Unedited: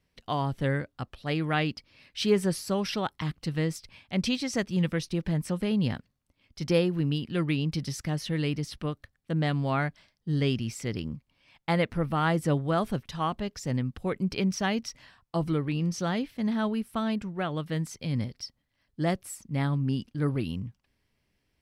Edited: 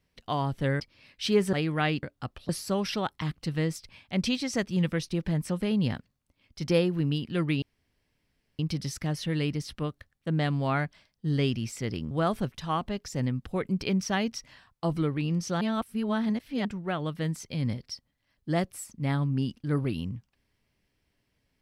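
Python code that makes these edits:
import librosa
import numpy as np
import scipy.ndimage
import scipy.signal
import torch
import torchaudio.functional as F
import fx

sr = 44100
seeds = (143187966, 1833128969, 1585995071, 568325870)

y = fx.edit(x, sr, fx.swap(start_s=0.8, length_s=0.46, other_s=1.76, other_length_s=0.73),
    fx.insert_room_tone(at_s=7.62, length_s=0.97),
    fx.cut(start_s=11.14, length_s=1.48),
    fx.reverse_span(start_s=16.12, length_s=1.04), tone=tone)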